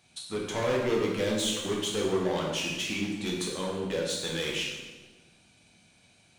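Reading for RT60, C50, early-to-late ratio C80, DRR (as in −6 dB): 1.2 s, 1.5 dB, 4.0 dB, −3.0 dB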